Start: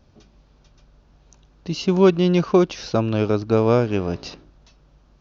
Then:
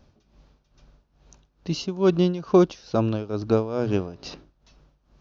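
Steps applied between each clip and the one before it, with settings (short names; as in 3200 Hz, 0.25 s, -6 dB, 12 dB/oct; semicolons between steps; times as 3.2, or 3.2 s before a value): notches 60/120 Hz; dynamic EQ 2200 Hz, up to -6 dB, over -42 dBFS, Q 1.7; tremolo 2.3 Hz, depth 83%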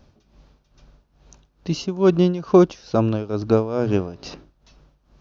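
dynamic EQ 3900 Hz, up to -4 dB, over -46 dBFS, Q 1.4; gain +3.5 dB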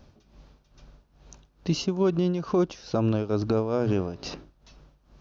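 compressor, threshold -17 dBFS, peak gain reduction 9 dB; limiter -15 dBFS, peak gain reduction 6 dB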